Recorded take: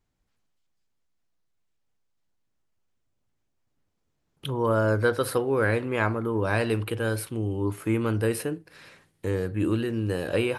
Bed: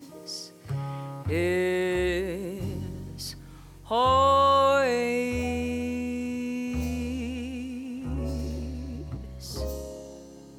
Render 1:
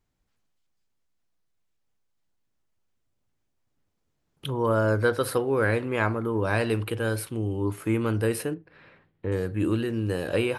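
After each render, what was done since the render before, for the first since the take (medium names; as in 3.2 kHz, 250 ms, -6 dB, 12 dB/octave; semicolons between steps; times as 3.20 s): 8.54–9.32 s: distance through air 410 m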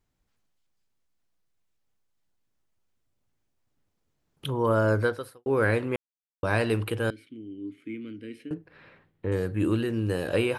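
5.00–5.46 s: fade out quadratic; 5.96–6.43 s: mute; 7.10–8.51 s: vowel filter i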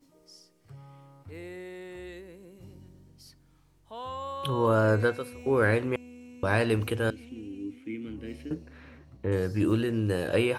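add bed -16.5 dB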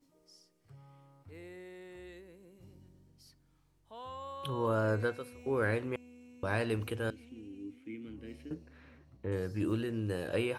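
trim -7.5 dB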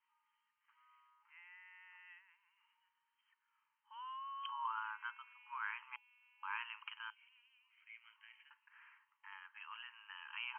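FFT band-pass 840–3200 Hz; dynamic bell 1.7 kHz, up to -8 dB, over -54 dBFS, Q 1.8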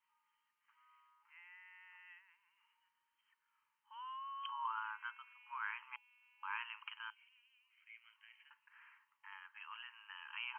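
4.99–5.51 s: high-pass 900 Hz; 7.23–8.41 s: high-pass 1.4 kHz 6 dB/octave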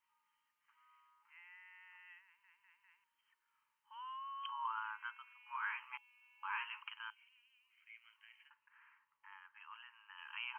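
2.24 s: stutter in place 0.20 s, 4 plays; 5.45–6.82 s: doubling 14 ms -3 dB; 8.47–10.17 s: treble shelf 2.4 kHz -> 2 kHz -10 dB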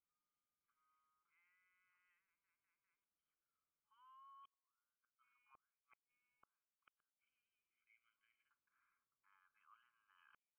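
inverted gate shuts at -37 dBFS, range -40 dB; boxcar filter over 48 samples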